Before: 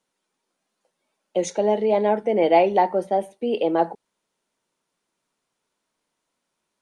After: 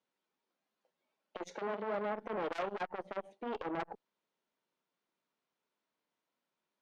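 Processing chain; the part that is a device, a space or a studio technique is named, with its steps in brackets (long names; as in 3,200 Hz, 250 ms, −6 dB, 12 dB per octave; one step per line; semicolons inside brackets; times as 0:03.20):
valve radio (band-pass filter 140–4,400 Hz; tube saturation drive 20 dB, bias 0.3; saturating transformer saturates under 840 Hz)
0:01.55–0:02.05: high-pass filter 140 Hz → 41 Hz
level −8 dB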